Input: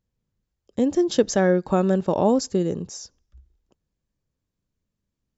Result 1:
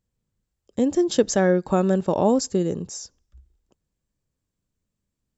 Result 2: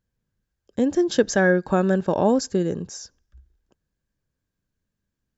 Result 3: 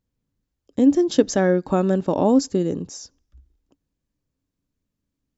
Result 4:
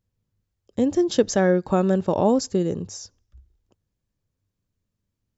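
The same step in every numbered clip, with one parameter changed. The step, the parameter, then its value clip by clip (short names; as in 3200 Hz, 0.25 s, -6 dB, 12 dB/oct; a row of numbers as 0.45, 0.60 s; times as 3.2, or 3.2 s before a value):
bell, frequency: 8000, 1600, 280, 100 Hz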